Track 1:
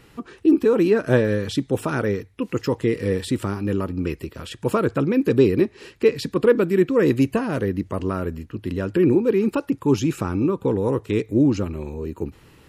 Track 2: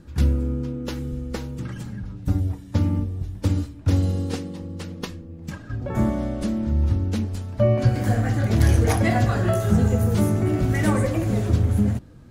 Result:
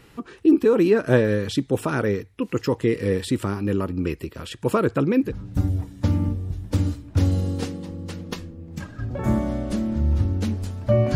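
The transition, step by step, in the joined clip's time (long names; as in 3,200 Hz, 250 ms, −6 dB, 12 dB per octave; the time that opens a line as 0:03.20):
track 1
0:05.27: continue with track 2 from 0:01.98, crossfade 0.12 s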